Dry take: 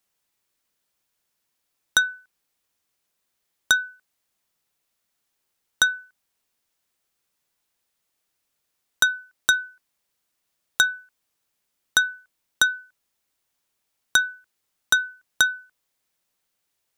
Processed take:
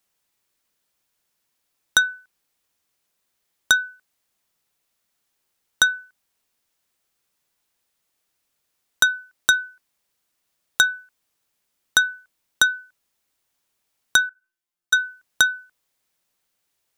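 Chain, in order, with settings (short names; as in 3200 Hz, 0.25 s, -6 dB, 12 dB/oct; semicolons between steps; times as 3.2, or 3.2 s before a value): 14.29–14.93 resonator bank A#2 fifth, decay 0.34 s; gain +2 dB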